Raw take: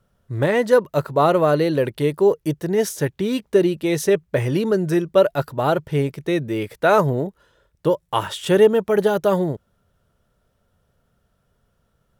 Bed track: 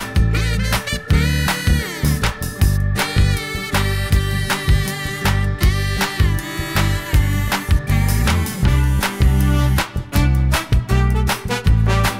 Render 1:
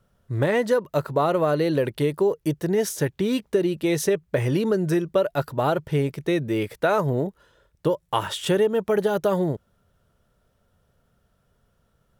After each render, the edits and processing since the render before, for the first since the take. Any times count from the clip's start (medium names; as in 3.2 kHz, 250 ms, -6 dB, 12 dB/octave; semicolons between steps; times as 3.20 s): compression 4:1, threshold -18 dBFS, peak gain reduction 8.5 dB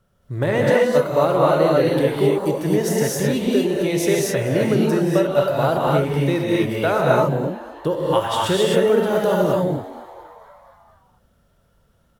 frequency-shifting echo 232 ms, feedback 63%, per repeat +100 Hz, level -19 dB; gated-style reverb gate 290 ms rising, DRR -3.5 dB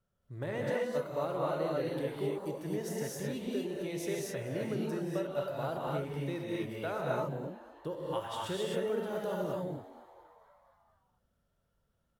trim -17 dB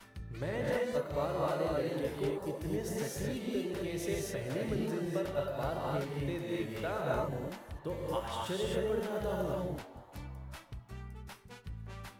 add bed track -30.5 dB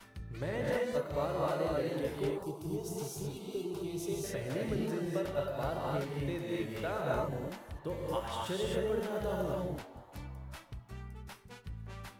2.43–4.24 s: static phaser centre 360 Hz, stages 8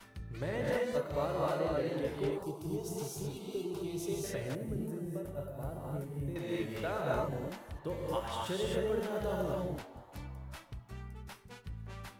1.59–2.32 s: treble shelf 6.9 kHz -6.5 dB; 4.55–6.36 s: FFT filter 130 Hz 0 dB, 4.5 kHz -19 dB, 10 kHz 0 dB